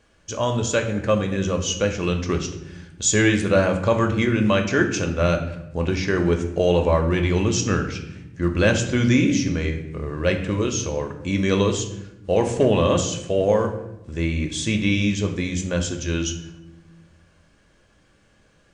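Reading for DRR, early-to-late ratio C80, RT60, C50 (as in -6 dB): 3.5 dB, 11.5 dB, 0.90 s, 9.0 dB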